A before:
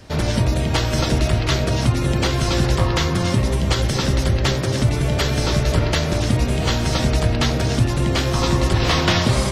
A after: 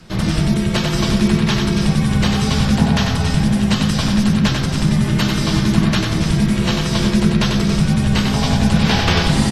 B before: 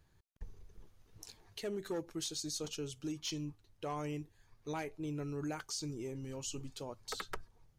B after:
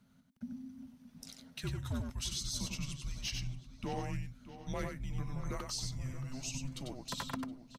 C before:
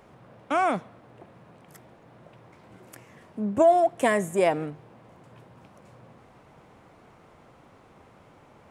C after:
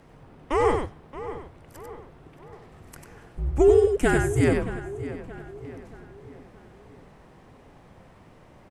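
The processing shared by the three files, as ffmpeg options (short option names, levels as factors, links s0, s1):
-filter_complex "[0:a]bandreject=f=7000:w=27,asplit=2[s0][s1];[s1]aecho=0:1:95:0.596[s2];[s0][s2]amix=inputs=2:normalize=0,afreqshift=-270,asplit=2[s3][s4];[s4]adelay=624,lowpass=f=3300:p=1,volume=0.211,asplit=2[s5][s6];[s6]adelay=624,lowpass=f=3300:p=1,volume=0.48,asplit=2[s7][s8];[s8]adelay=624,lowpass=f=3300:p=1,volume=0.48,asplit=2[s9][s10];[s10]adelay=624,lowpass=f=3300:p=1,volume=0.48,asplit=2[s11][s12];[s12]adelay=624,lowpass=f=3300:p=1,volume=0.48[s13];[s5][s7][s9][s11][s13]amix=inputs=5:normalize=0[s14];[s3][s14]amix=inputs=2:normalize=0,volume=1.12"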